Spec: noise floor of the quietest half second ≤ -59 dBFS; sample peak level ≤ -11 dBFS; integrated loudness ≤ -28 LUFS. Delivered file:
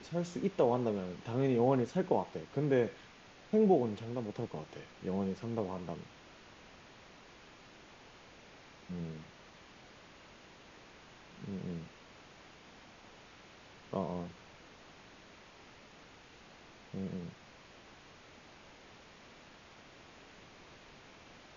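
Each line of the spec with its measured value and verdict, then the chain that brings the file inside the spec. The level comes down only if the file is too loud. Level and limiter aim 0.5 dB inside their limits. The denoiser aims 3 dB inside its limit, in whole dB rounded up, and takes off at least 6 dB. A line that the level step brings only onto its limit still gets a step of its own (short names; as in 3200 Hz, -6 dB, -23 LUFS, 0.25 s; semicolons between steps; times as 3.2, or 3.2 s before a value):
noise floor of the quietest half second -57 dBFS: fail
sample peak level -15.5 dBFS: OK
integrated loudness -35.0 LUFS: OK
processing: denoiser 6 dB, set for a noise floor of -57 dBFS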